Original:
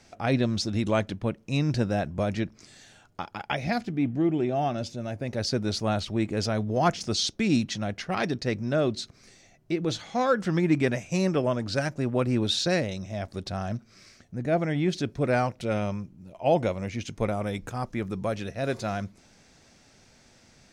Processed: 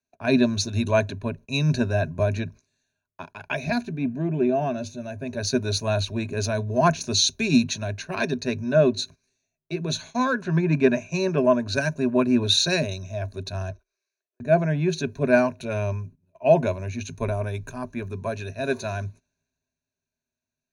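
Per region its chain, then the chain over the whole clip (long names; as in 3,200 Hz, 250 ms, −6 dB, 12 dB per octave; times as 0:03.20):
0:10.42–0:11.38: low-pass filter 9,200 Hz + high-shelf EQ 6,600 Hz −8.5 dB
0:13.70–0:14.40: Butterworth high-pass 320 Hz 72 dB per octave + downward compressor 2 to 1, threshold −60 dBFS
whole clip: EQ curve with evenly spaced ripples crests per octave 1.5, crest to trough 15 dB; noise gate −41 dBFS, range −19 dB; multiband upward and downward expander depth 40%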